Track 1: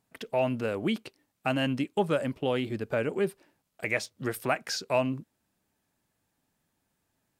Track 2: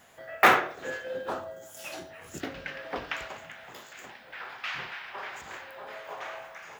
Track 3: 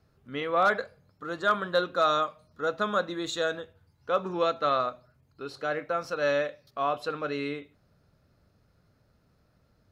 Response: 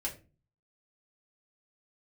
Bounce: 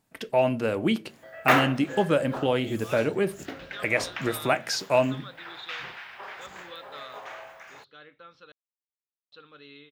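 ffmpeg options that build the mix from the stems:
-filter_complex "[0:a]volume=2dB,asplit=2[link_01][link_02];[link_02]volume=-10dB[link_03];[1:a]adelay=1050,volume=-2dB[link_04];[2:a]lowpass=frequency=3500:width_type=q:width=5.5,equalizer=frequency=660:width=4.7:gain=-14.5,adelay=2300,volume=-18.5dB,asplit=3[link_05][link_06][link_07];[link_05]atrim=end=8.52,asetpts=PTS-STARTPTS,afade=type=out:start_time=8.516:duration=0.004:curve=hsin[link_08];[link_06]atrim=start=8.52:end=9.32,asetpts=PTS-STARTPTS,volume=0[link_09];[link_07]atrim=start=9.32,asetpts=PTS-STARTPTS,afade=type=in:duration=0.004:curve=hsin[link_10];[link_08][link_09][link_10]concat=n=3:v=0:a=1[link_11];[3:a]atrim=start_sample=2205[link_12];[link_03][link_12]afir=irnorm=-1:irlink=0[link_13];[link_01][link_04][link_11][link_13]amix=inputs=4:normalize=0"

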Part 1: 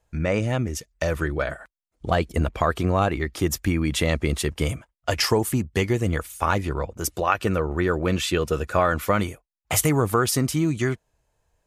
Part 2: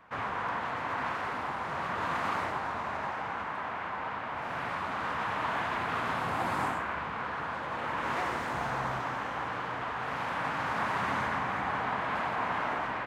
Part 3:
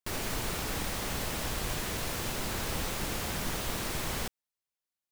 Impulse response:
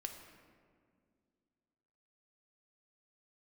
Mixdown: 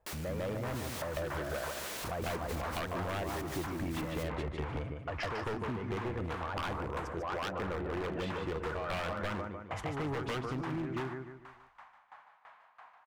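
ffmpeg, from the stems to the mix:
-filter_complex "[0:a]lowpass=1300,volume=3dB,asplit=3[link_01][link_02][link_03];[link_02]volume=-6.5dB[link_04];[1:a]lowshelf=frequency=520:width_type=q:width=1.5:gain=-11.5,aeval=exprs='val(0)*pow(10,-30*if(lt(mod(3*n/s,1),2*abs(3)/1000),1-mod(3*n/s,1)/(2*abs(3)/1000),(mod(3*n/s,1)-2*abs(3)/1000)/(1-2*abs(3)/1000))/20)':channel_layout=same,adelay=300,volume=-0.5dB,asplit=2[link_05][link_06];[link_06]volume=-18.5dB[link_07];[2:a]highpass=250,volume=-3.5dB[link_08];[link_03]apad=whole_len=589301[link_09];[link_05][link_09]sidechaingate=range=-33dB:threshold=-47dB:ratio=16:detection=peak[link_10];[link_01][link_08]amix=inputs=2:normalize=0,asoftclip=type=tanh:threshold=-16dB,alimiter=level_in=3.5dB:limit=-24dB:level=0:latency=1:release=11,volume=-3.5dB,volume=0dB[link_11];[link_04][link_07]amix=inputs=2:normalize=0,aecho=0:1:149|298|447|596|745:1|0.35|0.122|0.0429|0.015[link_12];[link_10][link_11][link_12]amix=inputs=3:normalize=0,lowshelf=frequency=410:gain=-6.5,aeval=exprs='0.0631*(abs(mod(val(0)/0.0631+3,4)-2)-1)':channel_layout=same,acompressor=threshold=-34dB:ratio=4"

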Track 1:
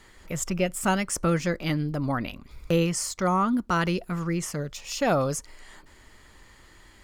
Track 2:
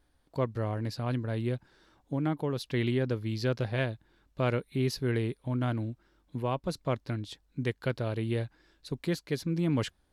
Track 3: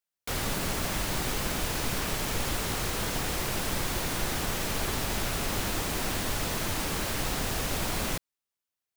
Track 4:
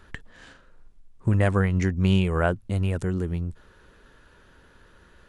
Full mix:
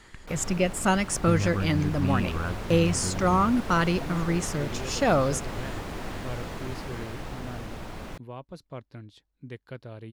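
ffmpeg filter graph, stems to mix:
ffmpeg -i stem1.wav -i stem2.wav -i stem3.wav -i stem4.wav -filter_complex "[0:a]lowpass=11000,volume=1dB[link_01];[1:a]highshelf=frequency=4700:gain=-4.5,adelay=1850,volume=-9.5dB[link_02];[2:a]dynaudnorm=framelen=210:gausssize=21:maxgain=4dB,lowpass=frequency=1500:poles=1,volume=-6dB[link_03];[3:a]aecho=1:1:0.8:0.65,volume=-10.5dB[link_04];[link_01][link_02][link_03][link_04]amix=inputs=4:normalize=0" out.wav

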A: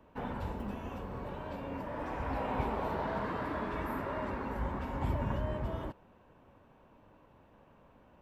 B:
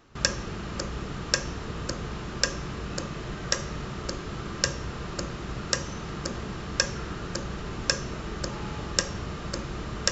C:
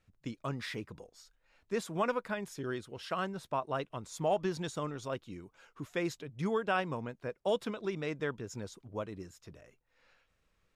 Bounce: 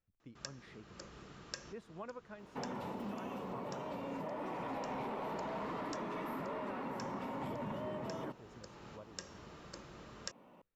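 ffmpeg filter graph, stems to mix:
ffmpeg -i stem1.wav -i stem2.wav -i stem3.wav -filter_complex "[0:a]highpass=frequency=150:width=0.5412,highpass=frequency=150:width=1.3066,bandreject=frequency=1600:width=5.9,asoftclip=type=tanh:threshold=-32.5dB,adelay=2400,volume=1.5dB[link_01];[1:a]lowshelf=frequency=96:gain=-11.5,adelay=200,volume=-16.5dB[link_02];[2:a]lowpass=frequency=1600:poles=1,volume=-14dB,asplit=2[link_03][link_04];[link_04]apad=whole_len=454895[link_05];[link_02][link_05]sidechaincompress=threshold=-53dB:ratio=8:attack=6.4:release=533[link_06];[link_01][link_06][link_03]amix=inputs=3:normalize=0,acompressor=threshold=-38dB:ratio=6" out.wav

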